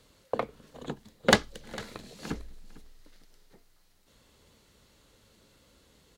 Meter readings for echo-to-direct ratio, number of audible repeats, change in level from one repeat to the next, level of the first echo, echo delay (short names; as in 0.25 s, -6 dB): -20.0 dB, 2, -14.0 dB, -20.0 dB, 0.452 s